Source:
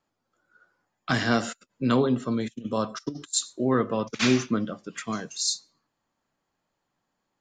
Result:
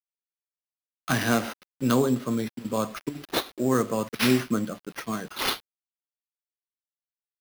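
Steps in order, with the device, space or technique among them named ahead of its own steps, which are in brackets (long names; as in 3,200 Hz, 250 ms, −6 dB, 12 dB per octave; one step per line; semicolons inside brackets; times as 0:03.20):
early 8-bit sampler (sample-rate reduction 7,700 Hz, jitter 0%; bit reduction 8 bits)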